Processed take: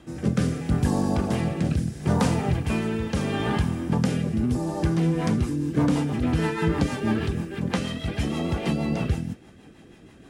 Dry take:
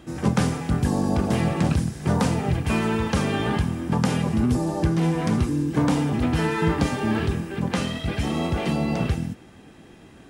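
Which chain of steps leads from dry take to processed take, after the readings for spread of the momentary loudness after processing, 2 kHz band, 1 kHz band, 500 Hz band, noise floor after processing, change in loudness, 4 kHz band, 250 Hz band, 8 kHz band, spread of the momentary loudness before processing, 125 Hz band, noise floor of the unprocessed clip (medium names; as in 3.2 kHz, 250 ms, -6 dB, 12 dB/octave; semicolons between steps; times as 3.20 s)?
5 LU, -3.0 dB, -3.5 dB, -2.0 dB, -50 dBFS, -1.5 dB, -3.0 dB, -1.5 dB, -3.0 dB, 4 LU, -1.5 dB, -48 dBFS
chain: rotary cabinet horn 0.75 Hz, later 6.3 Hz, at 4.72 s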